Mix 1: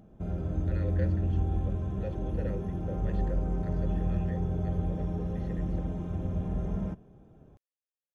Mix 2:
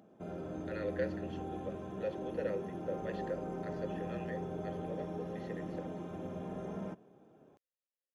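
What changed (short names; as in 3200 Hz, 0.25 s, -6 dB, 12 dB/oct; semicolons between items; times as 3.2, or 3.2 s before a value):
speech +3.5 dB; master: add HPF 290 Hz 12 dB/oct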